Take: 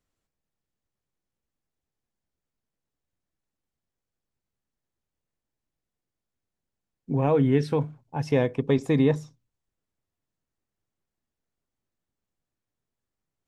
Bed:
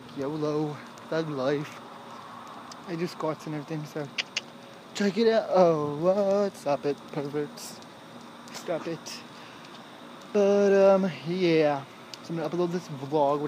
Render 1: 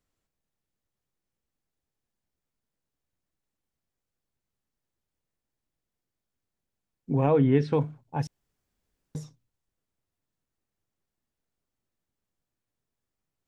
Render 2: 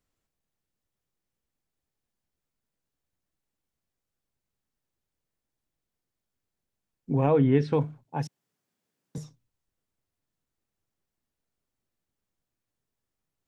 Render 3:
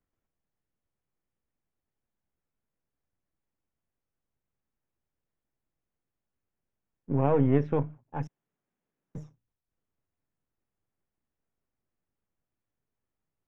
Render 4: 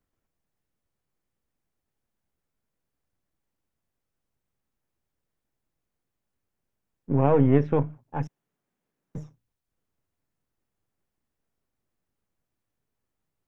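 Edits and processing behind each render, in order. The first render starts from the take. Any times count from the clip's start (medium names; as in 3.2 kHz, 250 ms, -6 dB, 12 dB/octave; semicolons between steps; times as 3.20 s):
7.26–7.73 s: distance through air 120 m; 8.27–9.15 s: room tone
8.05–9.18 s: high-pass 130 Hz 24 dB/octave
partial rectifier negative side -7 dB; boxcar filter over 10 samples
trim +4 dB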